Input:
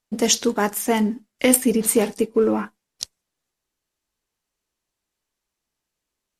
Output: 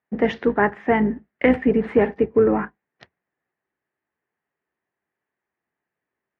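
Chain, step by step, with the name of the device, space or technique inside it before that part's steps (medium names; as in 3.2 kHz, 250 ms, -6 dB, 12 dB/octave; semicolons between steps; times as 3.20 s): sub-octave bass pedal (octave divider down 2 oct, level -5 dB; cabinet simulation 85–2200 Hz, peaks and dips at 95 Hz -8 dB, 390 Hz +4 dB, 760 Hz +4 dB, 1.8 kHz +9 dB)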